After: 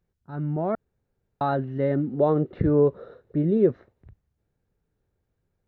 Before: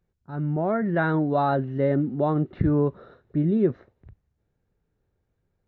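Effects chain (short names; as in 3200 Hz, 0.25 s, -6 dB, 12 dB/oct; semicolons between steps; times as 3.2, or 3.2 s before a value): 0.75–1.41 room tone; 2.13–3.7 bell 490 Hz +11 dB 0.52 oct; gain -1.5 dB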